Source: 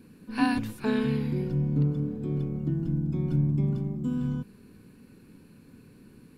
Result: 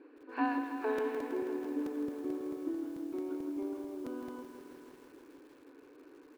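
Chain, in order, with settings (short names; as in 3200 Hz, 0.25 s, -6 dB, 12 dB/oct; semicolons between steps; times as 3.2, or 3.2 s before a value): brick-wall FIR high-pass 270 Hz; in parallel at +2 dB: compressor 5:1, threshold -48 dBFS, peak gain reduction 21.5 dB; on the sum: LPF 1500 Hz 12 dB/oct; on a send: echo 0.172 s -24 dB; on the sum: crackling interface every 0.22 s, samples 128, repeat, from 0.98; lo-fi delay 0.162 s, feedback 80%, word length 9-bit, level -9 dB; gain -3.5 dB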